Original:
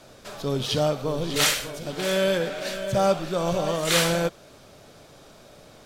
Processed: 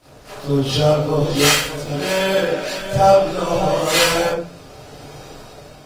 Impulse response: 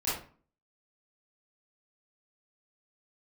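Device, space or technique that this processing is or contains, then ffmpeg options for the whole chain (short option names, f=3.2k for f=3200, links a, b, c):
speakerphone in a meeting room: -filter_complex "[1:a]atrim=start_sample=2205[a];[0:a][a]afir=irnorm=-1:irlink=0,dynaudnorm=f=310:g=5:m=10.5dB,volume=-1dB" -ar 48000 -c:a libopus -b:a 24k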